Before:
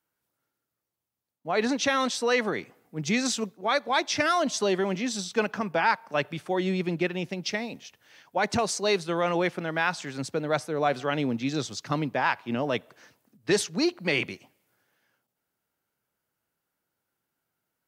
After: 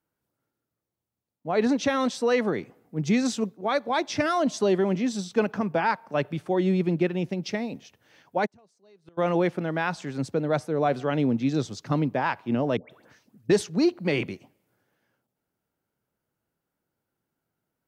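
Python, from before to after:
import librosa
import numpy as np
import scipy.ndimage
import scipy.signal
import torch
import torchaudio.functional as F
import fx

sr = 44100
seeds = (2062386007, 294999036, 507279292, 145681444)

y = fx.gate_flip(x, sr, shuts_db=-25.0, range_db=-34, at=(8.45, 9.17), fade=0.02)
y = fx.dispersion(y, sr, late='highs', ms=136.0, hz=1200.0, at=(12.77, 13.5))
y = fx.tilt_shelf(y, sr, db=5.5, hz=810.0)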